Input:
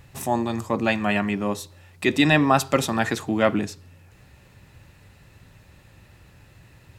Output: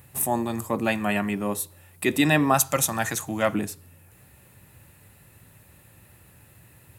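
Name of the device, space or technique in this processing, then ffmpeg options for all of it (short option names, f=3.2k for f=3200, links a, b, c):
budget condenser microphone: -filter_complex "[0:a]asettb=1/sr,asplit=3[a][b][c];[a]atrim=end=2.544[d];[b]atrim=start=2.54:end=3.55,asetpts=PTS-STARTPTS,afade=t=in:d=0.004:c=qsin,afade=t=out:st=1.006:d=0.004:c=qsin,equalizer=f=250:t=o:w=0.33:g=-9,equalizer=f=400:t=o:w=0.33:g=-12,equalizer=f=6.3k:t=o:w=0.33:g=12[e];[c]atrim=start=3.546[f];[d][e]acrossfade=d=0.004:c1=hsin:c2=qsin[g];[g][f]acrossfade=d=0.004:c1=qsin:c2=hsin,highpass=69,highshelf=f=7.8k:t=q:w=1.5:g=12.5,volume=-2dB"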